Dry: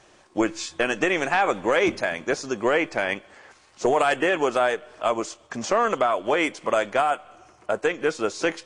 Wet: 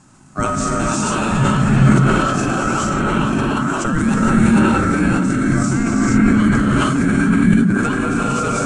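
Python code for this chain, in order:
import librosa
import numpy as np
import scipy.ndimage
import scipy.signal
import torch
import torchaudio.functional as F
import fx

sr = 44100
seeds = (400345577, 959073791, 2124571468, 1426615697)

p1 = fx.notch(x, sr, hz=2500.0, q=15.0)
p2 = p1 * np.sin(2.0 * np.pi * 930.0 * np.arange(len(p1)) / sr)
p3 = fx.graphic_eq(p2, sr, hz=(125, 250, 500, 1000, 2000, 4000, 8000), db=(11, 11, -11, 7, -7, -7, 10))
p4 = fx.echo_stepped(p3, sr, ms=176, hz=190.0, octaves=1.4, feedback_pct=70, wet_db=-2.0)
p5 = fx.rev_gated(p4, sr, seeds[0], gate_ms=490, shape='rising', drr_db=-7.0)
p6 = fx.over_compress(p5, sr, threshold_db=-23.0, ratio=-1.0)
p7 = p5 + (p6 * 10.0 ** (-2.0 / 20.0))
p8 = fx.low_shelf(p7, sr, hz=89.0, db=10.0)
p9 = fx.sustainer(p8, sr, db_per_s=21.0)
y = p9 * 10.0 ** (-5.0 / 20.0)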